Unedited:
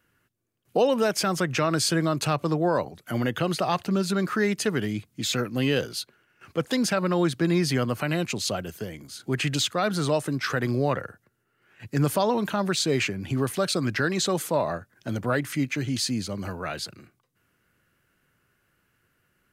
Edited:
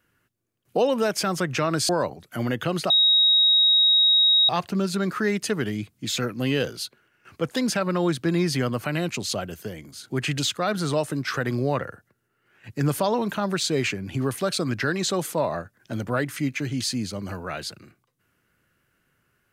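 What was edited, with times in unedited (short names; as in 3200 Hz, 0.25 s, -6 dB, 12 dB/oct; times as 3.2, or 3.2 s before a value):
1.89–2.64 cut
3.65 add tone 3790 Hz -14.5 dBFS 1.59 s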